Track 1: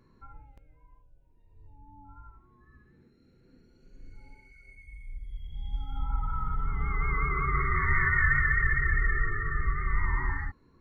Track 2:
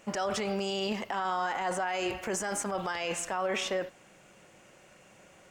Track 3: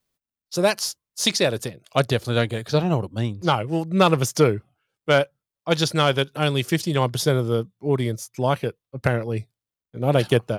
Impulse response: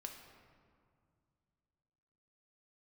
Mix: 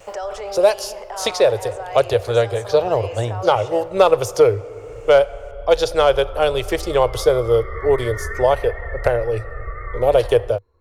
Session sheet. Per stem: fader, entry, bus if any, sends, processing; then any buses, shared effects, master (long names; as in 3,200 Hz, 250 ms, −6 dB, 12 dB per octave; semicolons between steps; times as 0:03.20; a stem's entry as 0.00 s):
−2.0 dB, 0.00 s, no send, no processing
−3.5 dB, 0.00 s, send −4 dB, high-pass filter 360 Hz 6 dB per octave; multiband upward and downward compressor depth 40%
−0.5 dB, 0.00 s, send −7.5 dB, automatic gain control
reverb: on, RT60 2.2 s, pre-delay 5 ms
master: drawn EQ curve 100 Hz 0 dB, 160 Hz −25 dB, 270 Hz −18 dB, 490 Hz +4 dB, 1,700 Hz −8 dB; pitch vibrato 0.35 Hz 11 cents; multiband upward and downward compressor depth 40%